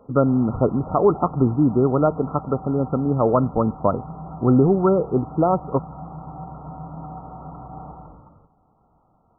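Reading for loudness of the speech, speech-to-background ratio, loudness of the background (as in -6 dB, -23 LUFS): -20.5 LUFS, 16.5 dB, -37.0 LUFS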